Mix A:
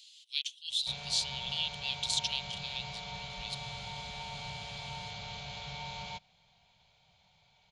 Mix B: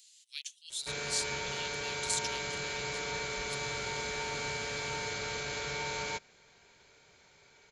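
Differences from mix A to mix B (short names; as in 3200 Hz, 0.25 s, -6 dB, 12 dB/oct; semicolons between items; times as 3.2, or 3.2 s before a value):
speech -11.0 dB; master: remove EQ curve 190 Hz 0 dB, 330 Hz -29 dB, 740 Hz +1 dB, 1600 Hz -17 dB, 3300 Hz +1 dB, 7200 Hz -16 dB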